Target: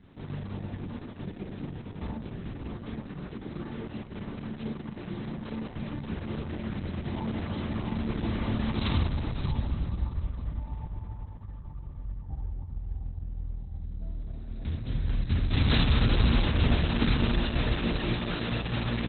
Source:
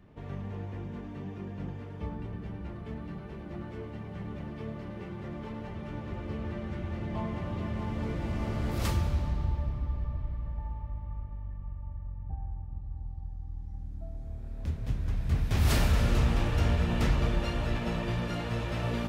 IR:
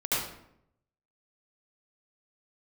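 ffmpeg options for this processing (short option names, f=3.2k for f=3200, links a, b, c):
-af "equalizer=f=250:t=o:w=0.67:g=7,equalizer=f=630:t=o:w=0.67:g=-4,equalizer=f=4k:t=o:w=0.67:g=9,aecho=1:1:49|56|263|580:0.562|0.15|0.133|0.376" -ar 48000 -c:a libopus -b:a 6k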